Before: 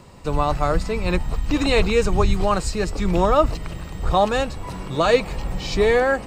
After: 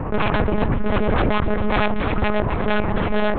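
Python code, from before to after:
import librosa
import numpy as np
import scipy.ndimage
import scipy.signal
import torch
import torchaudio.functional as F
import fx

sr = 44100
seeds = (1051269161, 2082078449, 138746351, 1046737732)

y = scipy.signal.sosfilt(scipy.signal.butter(4, 1700.0, 'lowpass', fs=sr, output='sos'), x)
y = 10.0 ** (-13.5 / 20.0) * (np.abs((y / 10.0 ** (-13.5 / 20.0) + 3.0) % 4.0 - 2.0) - 1.0)
y = fx.stretch_grains(y, sr, factor=0.54, grain_ms=159.0)
y = fx.cheby_harmonics(y, sr, harmonics=(4,), levels_db=(-8,), full_scale_db=-13.5)
y = fx.echo_feedback(y, sr, ms=264, feedback_pct=47, wet_db=-17.0)
y = fx.lpc_monotone(y, sr, seeds[0], pitch_hz=210.0, order=8)
y = fx.env_flatten(y, sr, amount_pct=70)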